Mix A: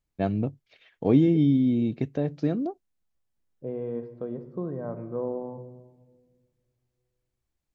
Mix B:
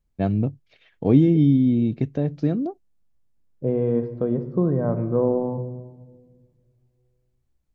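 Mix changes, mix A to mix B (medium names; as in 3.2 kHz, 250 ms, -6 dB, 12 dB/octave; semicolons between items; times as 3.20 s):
second voice +8.0 dB; master: add bass shelf 220 Hz +8.5 dB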